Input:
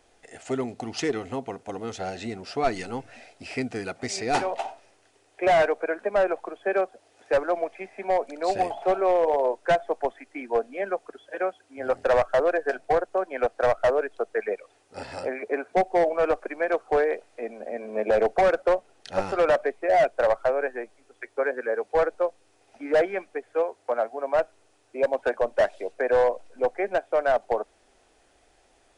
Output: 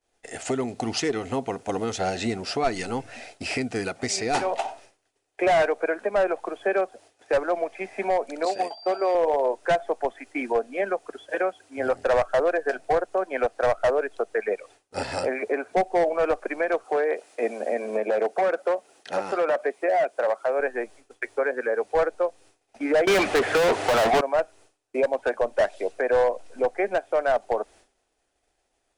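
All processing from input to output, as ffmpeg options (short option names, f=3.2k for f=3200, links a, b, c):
-filter_complex "[0:a]asettb=1/sr,asplit=3[a][b][c];[a]atrim=end=8.454[d];[b]atrim=start=8.45:end=9.15,asetpts=PTS-STARTPTS,afade=t=in:d=0.004:c=qsin,afade=t=out:st=0.696:d=0.004:c=qsin,agate=range=-33dB:threshold=-26dB:ratio=3:release=100:detection=peak,highpass=260,aeval=exprs='val(0)+0.00398*sin(2*PI*4700*n/s)':c=same[e];[c]atrim=start=9.146[f];[d][e]acrossfade=d=0.004:c1=hsin:c2=qsin[g];[g][f]acrossfade=d=0.004:c1=qsin:c2=hsin,asettb=1/sr,asplit=3[h][i][j];[h]atrim=end=16.844[k];[i]atrim=start=16.84:end=20.6,asetpts=PTS-STARTPTS,afade=t=in:d=0.004:c=qsin,afade=t=out:st=3.756:d=0.004:c=qsin,highpass=230,highshelf=f=4.9k:g=4.5,acrossover=split=2500[l][m];[m]acompressor=threshold=-47dB:ratio=4:attack=1:release=60[n];[l][n]amix=inputs=2:normalize=0[o];[j]atrim=start=20.596[p];[k][o]acrossfade=d=0.004:c1=hsin:c2=qsin[q];[q][p]acrossfade=d=0.004:c1=qsin:c2=hsin,asettb=1/sr,asplit=3[r][s][t];[r]atrim=end=23.074[u];[s]atrim=start=23.07:end=24.21,asetpts=PTS-STARTPTS,afade=t=in:d=0.004:c=qsin,afade=t=out:st=1.136:d=0.004:c=qsin,bass=f=250:g=13,treble=f=4k:g=-7,asplit=2[v][w];[w]highpass=f=720:p=1,volume=40dB,asoftclip=type=tanh:threshold=-13dB[x];[v][x]amix=inputs=2:normalize=0,lowpass=f=3.6k:p=1,volume=-6dB[y];[t]atrim=start=24.206[z];[u][y]acrossfade=d=0.004:c1=hsin:c2=qsin[aa];[aa][z]acrossfade=d=0.004:c1=qsin:c2=hsin,agate=range=-33dB:threshold=-48dB:ratio=3:detection=peak,highshelf=f=5.7k:g=5,alimiter=limit=-23.5dB:level=0:latency=1:release=429,volume=8dB"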